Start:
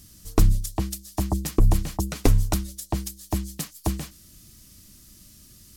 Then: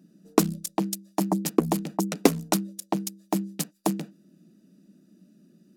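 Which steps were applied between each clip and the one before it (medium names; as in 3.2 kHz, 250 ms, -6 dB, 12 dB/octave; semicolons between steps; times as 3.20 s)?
local Wiener filter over 41 samples; elliptic high-pass 170 Hz, stop band 40 dB; trim +5 dB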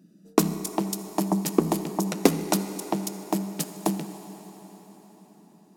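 reverberation RT60 5.1 s, pre-delay 4 ms, DRR 8.5 dB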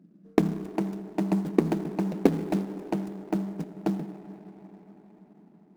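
median filter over 41 samples; tape noise reduction on one side only decoder only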